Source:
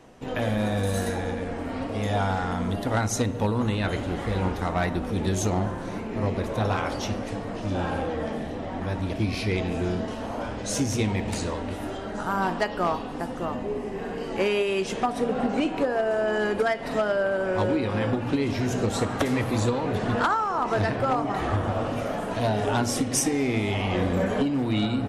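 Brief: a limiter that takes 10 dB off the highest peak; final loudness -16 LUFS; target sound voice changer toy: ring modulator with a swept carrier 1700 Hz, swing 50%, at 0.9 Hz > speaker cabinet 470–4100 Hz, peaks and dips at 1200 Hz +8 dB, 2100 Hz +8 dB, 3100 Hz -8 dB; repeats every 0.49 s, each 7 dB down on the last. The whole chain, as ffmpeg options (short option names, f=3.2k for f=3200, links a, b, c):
-af "alimiter=level_in=2dB:limit=-24dB:level=0:latency=1,volume=-2dB,aecho=1:1:490|980|1470|1960|2450:0.447|0.201|0.0905|0.0407|0.0183,aeval=exprs='val(0)*sin(2*PI*1700*n/s+1700*0.5/0.9*sin(2*PI*0.9*n/s))':c=same,highpass=470,equalizer=f=1.2k:t=q:w=4:g=8,equalizer=f=2.1k:t=q:w=4:g=8,equalizer=f=3.1k:t=q:w=4:g=-8,lowpass=f=4.1k:w=0.5412,lowpass=f=4.1k:w=1.3066,volume=14dB"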